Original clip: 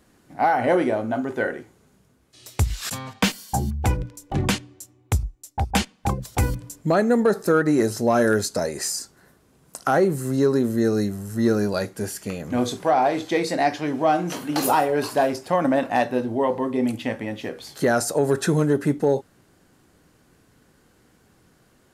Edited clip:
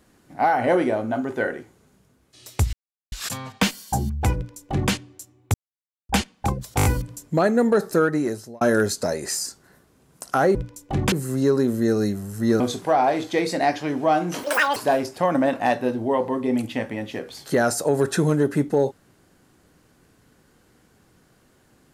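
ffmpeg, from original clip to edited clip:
-filter_complex "[0:a]asplit=14[a][b][c][d][e][f][g][h][i][j][k][l][m][n];[a]atrim=end=2.73,asetpts=PTS-STARTPTS,afade=t=out:st=2.726:d=0.004:c=hsin,apad=pad_dur=0.39[o];[b]atrim=start=2.73:end=5.15,asetpts=PTS-STARTPTS,afade=t=in:d=0.004:c=hsin,afade=t=out:st=2.416:d=0.004:c=hsin[p];[c]atrim=start=5.15:end=5.7,asetpts=PTS-STARTPTS,volume=0[q];[d]atrim=start=5.7:end=6.402,asetpts=PTS-STARTPTS,afade=t=in:d=0.004:c=hsin[r];[e]atrim=start=6.378:end=6.402[s];[f]atrim=start=6.378:end=6.402[t];[g]atrim=start=6.378:end=6.402[u];[h]atrim=start=6.378:end=8.14,asetpts=PTS-STARTPTS,afade=t=out:st=1.122:d=0.64[v];[i]atrim=start=8.14:end=10.082,asetpts=PTS-STARTPTS,afade=t=in:d=0.004:c=hsin[w];[j]atrim=start=3.958:end=4.532[x];[k]atrim=start=10.078:end=11.562[y];[l]atrim=start=12.578:end=14.414[z];[m]atrim=start=14.41:end=15.06,asetpts=PTS-STARTPTS,asetrate=86436,aresample=44100[aa];[n]atrim=start=15.056[ab];[o][p][q][r]concat=n=4:v=0:a=1[ac];[ac][s]acrossfade=d=0.004:c1=hsin:c2=hsin[ad];[ad][t]acrossfade=d=0.004:c1=hsin:c2=hsin[ae];[ae][u]acrossfade=d=0.004:c1=hsin:c2=hsin[af];[v][w]concat=n=2:v=0:a=1[ag];[af][ag]acrossfade=d=0.004:c1=hsin:c2=hsin[ah];[ah][x]acrossfade=d=0.004:c1=hsin:c2=hsin[ai];[ai][y]acrossfade=d=0.004:c1=hsin:c2=hsin[aj];[aj][z]acrossfade=d=0.004:c1=hsin:c2=hsin[ak];[ak][aa]acrossfade=d=0.004:c1=hsin:c2=hsin[al];[al][ab]acrossfade=d=0.004:c1=hsin:c2=hsin"

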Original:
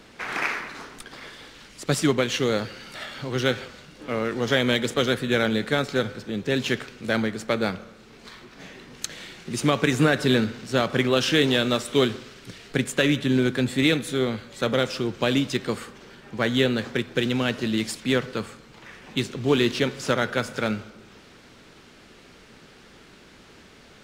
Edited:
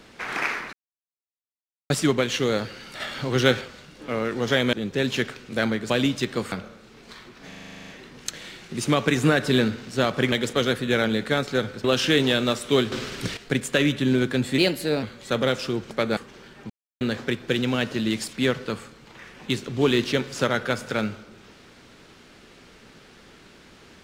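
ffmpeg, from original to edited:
-filter_complex "[0:a]asplit=28[a][b][c][d][e][f][g][h][i][j][k][l][m][n][o][p][q][r][s][t][u][v][w][x][y][z][aa][ab];[a]atrim=end=0.73,asetpts=PTS-STARTPTS,afade=t=out:st=0.726:d=0.004:c=hsin[ac];[b]atrim=start=0.73:end=1.9,asetpts=PTS-STARTPTS,volume=0[ad];[c]atrim=start=1.9:end=3.002,asetpts=PTS-STARTPTS,afade=t=in:d=0.004:c=hsin[ae];[d]atrim=start=2.998:end=3.612,asetpts=PTS-STARTPTS,volume=4dB[af];[e]atrim=start=3.608:end=4.732[ag];[f]atrim=start=6.248:end=7.422[ah];[g]atrim=start=15.218:end=15.842[ai];[h]atrim=start=7.678:end=8.682[aj];[i]atrim=start=8.638:end=8.682[ak];[j]atrim=start=8.638:end=8.682[al];[k]atrim=start=8.638:end=8.682[am];[l]atrim=start=8.638:end=8.682[an];[m]atrim=start=8.638:end=8.682[ao];[n]atrim=start=8.638:end=8.682[ap];[o]atrim=start=8.638:end=8.682[aq];[p]atrim=start=8.638:end=8.682[ar];[q]atrim=start=8.638:end=8.682[as];[r]atrim=start=8.638:end=11.082[at];[s]atrim=start=4.728:end=6.252[au];[t]atrim=start=11.078:end=12.162[av];[u]atrim=start=12.158:end=12.612,asetpts=PTS-STARTPTS,volume=11.5dB[aw];[v]atrim=start=12.608:end=13.824[ax];[w]atrim=start=13.82:end=14.34,asetpts=PTS-STARTPTS,asetrate=51156,aresample=44100[ay];[x]atrim=start=14.336:end=15.222[az];[y]atrim=start=7.418:end=7.682[ba];[z]atrim=start=15.838:end=16.37,asetpts=PTS-STARTPTS,afade=t=out:st=0.528:d=0.004:c=hsin[bb];[aa]atrim=start=16.37:end=16.68,asetpts=PTS-STARTPTS,volume=0[bc];[ab]atrim=start=16.68,asetpts=PTS-STARTPTS,afade=t=in:d=0.004:c=hsin[bd];[ac][ad][ae]concat=n=3:v=0:a=1[be];[be][af]acrossfade=d=0.004:c1=hsin:c2=hsin[bf];[bf][ag]acrossfade=d=0.004:c1=hsin:c2=hsin[bg];[bg][ah]acrossfade=d=0.004:c1=hsin:c2=hsin[bh];[bh][ai]acrossfade=d=0.004:c1=hsin:c2=hsin[bi];[bi][aj]acrossfade=d=0.004:c1=hsin:c2=hsin[bj];[bj][ak]acrossfade=d=0.004:c1=hsin:c2=hsin[bk];[bk][al]acrossfade=d=0.004:c1=hsin:c2=hsin[bl];[bl][am]acrossfade=d=0.004:c1=hsin:c2=hsin[bm];[bm][an]acrossfade=d=0.004:c1=hsin:c2=hsin[bn];[bn][ao]acrossfade=d=0.004:c1=hsin:c2=hsin[bo];[bo][ap]acrossfade=d=0.004:c1=hsin:c2=hsin[bp];[bp][aq]acrossfade=d=0.004:c1=hsin:c2=hsin[bq];[bq][ar]acrossfade=d=0.004:c1=hsin:c2=hsin[br];[br][as]acrossfade=d=0.004:c1=hsin:c2=hsin[bs];[bs][at]acrossfade=d=0.004:c1=hsin:c2=hsin[bt];[bt][au]acrossfade=d=0.004:c1=hsin:c2=hsin[bu];[bu][av]acrossfade=d=0.004:c1=hsin:c2=hsin[bv];[bv][aw]acrossfade=d=0.004:c1=hsin:c2=hsin[bw];[bw][ax]acrossfade=d=0.004:c1=hsin:c2=hsin[bx];[bx][ay]acrossfade=d=0.004:c1=hsin:c2=hsin[by];[by][az]acrossfade=d=0.004:c1=hsin:c2=hsin[bz];[bz][ba]acrossfade=d=0.004:c1=hsin:c2=hsin[ca];[bb][bc][bd]concat=n=3:v=0:a=1[cb];[ca][cb]acrossfade=d=0.004:c1=hsin:c2=hsin"

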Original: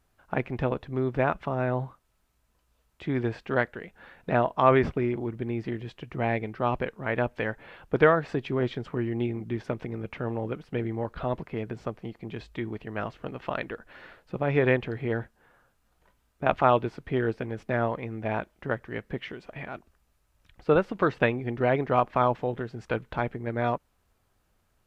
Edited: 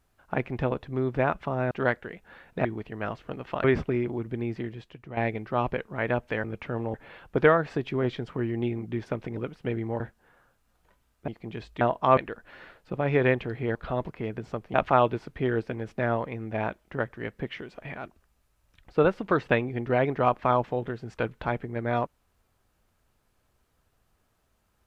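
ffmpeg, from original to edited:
-filter_complex "[0:a]asplit=14[a][b][c][d][e][f][g][h][i][j][k][l][m][n];[a]atrim=end=1.712[o];[b]atrim=start=3.418:end=4.362[p];[c]atrim=start=12.598:end=13.592[q];[d]atrim=start=4.718:end=6.25,asetpts=PTS-STARTPTS,afade=t=out:st=0.852:d=0.68:silence=0.266073[r];[e]atrim=start=6.25:end=7.522,asetpts=PTS-STARTPTS,afade=t=in:d=0.004:c=hsin:silence=0.266073[s];[f]atrim=start=9.948:end=10.452[t];[g]atrim=start=7.518:end=9.952[u];[h]atrim=start=10.448:end=11.082[v];[i]atrim=start=15.168:end=16.452[w];[j]atrim=start=12.068:end=12.602[x];[k]atrim=start=4.358:end=4.722[y];[l]atrim=start=13.588:end=15.172[z];[m]atrim=start=11.078:end=12.072[aa];[n]atrim=start=16.448[ab];[o][p]acrossfade=d=0.004:c1=hsin:c2=hsin[ac];[ac][q]acrossfade=d=0.004:c1=hsin:c2=hsin[ad];[r][s]concat=n=2:v=0:a=1[ae];[ad][ae]acrossfade=d=0.004:c1=hsin:c2=hsin[af];[af][t]acrossfade=d=0.004:c1=hsin:c2=hsin[ag];[ag][u]acrossfade=d=0.004:c1=hsin:c2=hsin[ah];[ah][v]acrossfade=d=0.004:c1=hsin:c2=hsin[ai];[ai][w]acrossfade=d=0.004:c1=hsin:c2=hsin[aj];[aj][x]acrossfade=d=0.004:c1=hsin:c2=hsin[ak];[ak][y]acrossfade=d=0.004:c1=hsin:c2=hsin[al];[al][z]acrossfade=d=0.004:c1=hsin:c2=hsin[am];[am][aa]acrossfade=d=0.004:c1=hsin:c2=hsin[an];[an][ab]acrossfade=d=0.004:c1=hsin:c2=hsin"

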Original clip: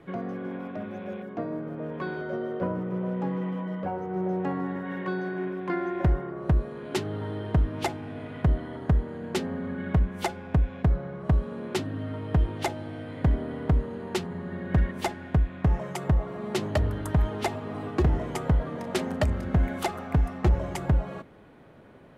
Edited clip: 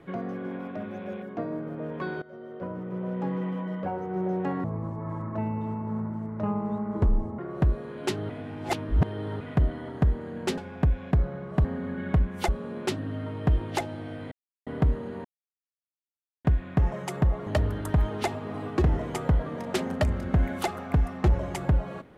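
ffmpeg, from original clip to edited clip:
-filter_complex "[0:a]asplit=14[a][b][c][d][e][f][g][h][i][j][k][l][m][n];[a]atrim=end=2.22,asetpts=PTS-STARTPTS,afade=t=out:st=2.216:d=0.004:c=hsin:silence=0.125893[o];[b]atrim=start=2.22:end=4.644,asetpts=PTS-STARTPTS,afade=t=in:d=1.11:silence=0.125893[p];[c]atrim=start=4.64:end=6.26,asetpts=PTS-STARTPTS,asetrate=26019,aresample=44100,atrim=end_sample=121088,asetpts=PTS-STARTPTS[q];[d]atrim=start=6.256:end=7.172[r];[e]atrim=start=7.168:end=8.282,asetpts=PTS-STARTPTS,areverse[s];[f]atrim=start=8.278:end=9.452[t];[g]atrim=start=10.288:end=11.362[u];[h]atrim=start=9.448:end=10.292[v];[i]atrim=start=11.358:end=13.19,asetpts=PTS-STARTPTS,afade=t=out:st=1.828:d=0.004:c=hsin[w];[j]atrim=start=13.19:end=13.54,asetpts=PTS-STARTPTS,volume=0[x];[k]atrim=start=13.54:end=14.12,asetpts=PTS-STARTPTS,afade=t=in:d=0.004:c=hsin,afade=t=out:st=0.576:d=0.004:c=hsin[y];[l]atrim=start=14.12:end=15.32,asetpts=PTS-STARTPTS,volume=0[z];[m]atrim=start=15.32:end=16.342,asetpts=PTS-STARTPTS,afade=t=in:d=0.004:c=hsin[aa];[n]atrim=start=16.668[ab];[o][p]concat=n=2:v=0:a=1[ac];[ac][q]acrossfade=d=0.004:c1=hsin:c2=hsin[ad];[ad][r]acrossfade=d=0.004:c1=hsin:c2=hsin[ae];[ae][s]acrossfade=d=0.004:c1=hsin:c2=hsin[af];[af][t]acrossfade=d=0.004:c1=hsin:c2=hsin[ag];[ag][u]acrossfade=d=0.004:c1=hsin:c2=hsin[ah];[ah][v]acrossfade=d=0.004:c1=hsin:c2=hsin[ai];[w][x][y][z][aa]concat=n=5:v=0:a=1[aj];[ai][aj]acrossfade=d=0.004:c1=hsin:c2=hsin[ak];[ak][ab]acrossfade=d=0.004:c1=hsin:c2=hsin"

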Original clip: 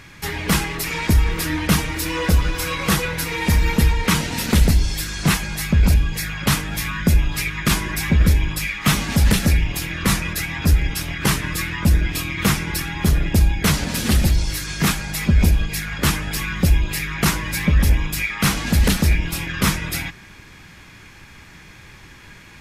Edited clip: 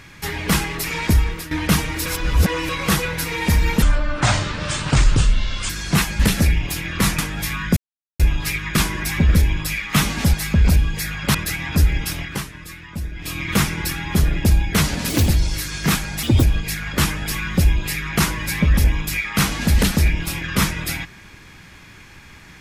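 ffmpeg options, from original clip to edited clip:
-filter_complex "[0:a]asplit=17[a][b][c][d][e][f][g][h][i][j][k][l][m][n][o][p][q];[a]atrim=end=1.51,asetpts=PTS-STARTPTS,afade=t=out:st=1.16:d=0.35:silence=0.199526[r];[b]atrim=start=1.51:end=2.062,asetpts=PTS-STARTPTS,afade=t=in:d=0.004:c=hsin:silence=0.199526[s];[c]atrim=start=2.058:end=2.692,asetpts=PTS-STARTPTS,areverse[t];[d]atrim=start=2.688:end=3.824[u];[e]atrim=start=3.82:end=5.02,asetpts=PTS-STARTPTS,asetrate=28224,aresample=44100[v];[f]atrim=start=5.016:end=5.522[w];[g]atrim=start=9.248:end=10.242[x];[h]atrim=start=6.528:end=7.11,asetpts=PTS-STARTPTS,afade=t=out:st=0.578:d=0.004:c=hsin,apad=pad_dur=0.43[y];[i]atrim=start=7.11:end=9.252,asetpts=PTS-STARTPTS,afade=t=in:d=0.004:c=hsin[z];[j]atrim=start=5.518:end=6.532[aa];[k]atrim=start=10.238:end=11.33,asetpts=PTS-STARTPTS,afade=t=out:st=0.832:d=0.26:silence=0.237137[ab];[l]atrim=start=11.33:end=12.05,asetpts=PTS-STARTPTS,volume=-12.5dB[ac];[m]atrim=start=12.05:end=13.994,asetpts=PTS-STARTPTS,afade=t=in:d=0.26:silence=0.237137[ad];[n]atrim=start=13.99:end=14.24,asetpts=PTS-STARTPTS,asetrate=59535,aresample=44100[ae];[o]atrim=start=14.236:end=15.194[af];[p]atrim=start=15.19:end=15.48,asetpts=PTS-STARTPTS,asetrate=65268,aresample=44100,atrim=end_sample=8641,asetpts=PTS-STARTPTS[ag];[q]atrim=start=15.476[ah];[r][s]concat=n=2:v=0:a=1[ai];[ai][t]acrossfade=d=0.004:c1=hsin:c2=hsin[aj];[aj][u]acrossfade=d=0.004:c1=hsin:c2=hsin[ak];[ak][v]acrossfade=d=0.004:c1=hsin:c2=hsin[al];[al][w]acrossfade=d=0.004:c1=hsin:c2=hsin[am];[am][x]acrossfade=d=0.004:c1=hsin:c2=hsin[an];[y][z]concat=n=2:v=0:a=1[ao];[an][ao]acrossfade=d=0.004:c1=hsin:c2=hsin[ap];[ap][aa]acrossfade=d=0.004:c1=hsin:c2=hsin[aq];[ab][ac][ad]concat=n=3:v=0:a=1[ar];[aq][ar]acrossfade=d=0.004:c1=hsin:c2=hsin[as];[as][ae]acrossfade=d=0.004:c1=hsin:c2=hsin[at];[at][af]acrossfade=d=0.004:c1=hsin:c2=hsin[au];[au][ag]acrossfade=d=0.004:c1=hsin:c2=hsin[av];[av][ah]acrossfade=d=0.004:c1=hsin:c2=hsin"

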